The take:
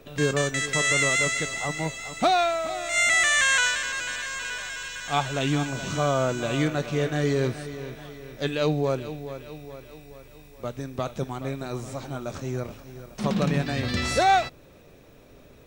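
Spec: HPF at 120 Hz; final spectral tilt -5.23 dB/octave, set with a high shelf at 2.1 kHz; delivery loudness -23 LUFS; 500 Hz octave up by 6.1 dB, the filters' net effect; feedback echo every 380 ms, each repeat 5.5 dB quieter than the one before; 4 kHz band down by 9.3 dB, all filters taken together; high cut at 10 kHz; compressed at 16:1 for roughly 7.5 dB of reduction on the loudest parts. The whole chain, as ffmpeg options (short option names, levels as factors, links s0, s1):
-af "highpass=120,lowpass=10000,equalizer=f=500:t=o:g=8.5,highshelf=f=2100:g=-8.5,equalizer=f=4000:t=o:g=-4,acompressor=threshold=0.1:ratio=16,aecho=1:1:380|760|1140|1520|1900|2280|2660:0.531|0.281|0.149|0.079|0.0419|0.0222|0.0118,volume=1.5"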